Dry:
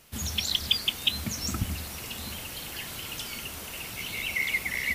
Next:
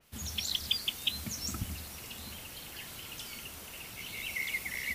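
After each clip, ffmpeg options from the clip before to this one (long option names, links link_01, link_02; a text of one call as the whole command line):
ffmpeg -i in.wav -af "adynamicequalizer=threshold=0.0158:dfrequency=3900:dqfactor=0.7:tfrequency=3900:tqfactor=0.7:attack=5:release=100:ratio=0.375:range=2:mode=boostabove:tftype=highshelf,volume=-7.5dB" out.wav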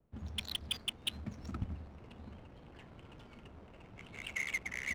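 ffmpeg -i in.wav -filter_complex "[0:a]acrossover=split=230|440|2000[link_01][link_02][link_03][link_04];[link_04]volume=29dB,asoftclip=hard,volume=-29dB[link_05];[link_01][link_02][link_03][link_05]amix=inputs=4:normalize=0,adynamicsmooth=sensitivity=7:basefreq=550,volume=-1dB" out.wav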